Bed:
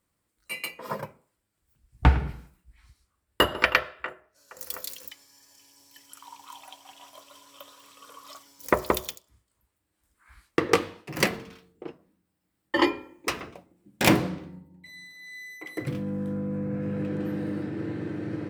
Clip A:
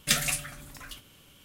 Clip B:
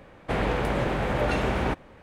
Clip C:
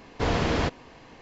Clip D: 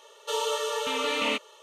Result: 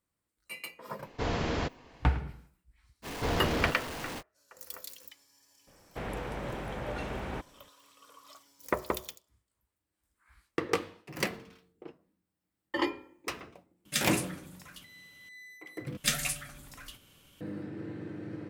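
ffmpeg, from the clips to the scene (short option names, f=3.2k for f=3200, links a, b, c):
-filter_complex "[3:a]asplit=2[a][b];[1:a]asplit=2[c][d];[0:a]volume=-8dB[e];[b]aeval=exprs='val(0)+0.5*0.0447*sgn(val(0))':c=same[f];[c]highpass=72[g];[e]asplit=2[h][i];[h]atrim=end=15.974[j];[d]atrim=end=1.44,asetpts=PTS-STARTPTS,volume=-4dB[k];[i]atrim=start=17.406[l];[a]atrim=end=1.21,asetpts=PTS-STARTPTS,volume=-6.5dB,afade=t=in:d=0.004:c=hsin,afade=t=out:st=1.206:d=0.004:c=hsin,adelay=990[m];[f]atrim=end=1.21,asetpts=PTS-STARTPTS,volume=-7.5dB,afade=t=in:d=0.05,afade=t=out:st=1.16:d=0.05,adelay=3020[n];[2:a]atrim=end=2.02,asetpts=PTS-STARTPTS,volume=-11.5dB,afade=t=in:d=0.004:c=hsin,afade=t=out:st=2.016:d=0.004:c=hsin,adelay=5670[o];[g]atrim=end=1.44,asetpts=PTS-STARTPTS,volume=-6.5dB,afade=t=in:d=0.004:c=hsin,afade=t=out:st=1.436:d=0.004:c=hsin,adelay=13850[p];[j][k]acrossfade=d=0.004:c1=hsin:c2=hsin[q];[q][l]acrossfade=d=0.004:c1=hsin:c2=hsin[r];[r][m][n][o][p]amix=inputs=5:normalize=0"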